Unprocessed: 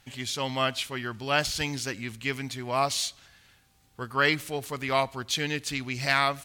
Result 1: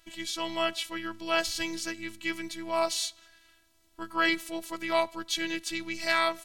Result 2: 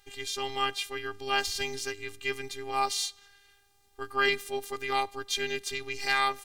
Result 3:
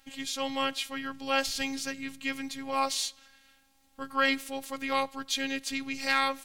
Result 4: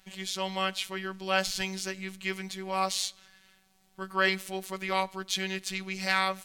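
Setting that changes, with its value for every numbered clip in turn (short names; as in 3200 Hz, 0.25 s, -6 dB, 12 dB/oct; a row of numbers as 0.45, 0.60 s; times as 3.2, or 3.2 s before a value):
robotiser, frequency: 330, 400, 270, 190 Hz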